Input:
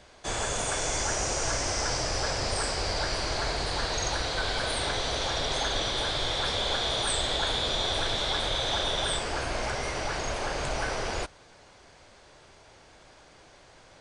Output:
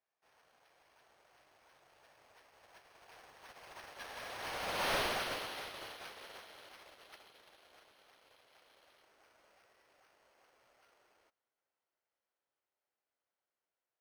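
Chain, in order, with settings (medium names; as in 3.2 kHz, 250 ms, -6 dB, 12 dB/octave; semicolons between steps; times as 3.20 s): self-modulated delay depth 0.45 ms; Doppler pass-by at 4.94 s, 30 m/s, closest 3 m; careless resampling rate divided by 6×, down filtered, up hold; overdrive pedal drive 32 dB, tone 6.2 kHz, clips at -21 dBFS; upward expansion 2.5:1, over -40 dBFS; trim -5 dB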